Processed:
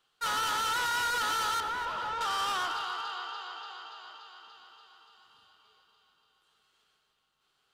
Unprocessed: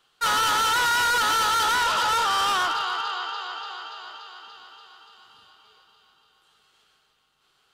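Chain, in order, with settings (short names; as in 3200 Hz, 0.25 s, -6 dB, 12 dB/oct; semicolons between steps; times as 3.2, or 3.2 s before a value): 1.6–2.21 tape spacing loss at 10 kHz 26 dB; echo with dull and thin repeats by turns 0.124 s, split 1700 Hz, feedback 62%, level -12 dB; gain -8.5 dB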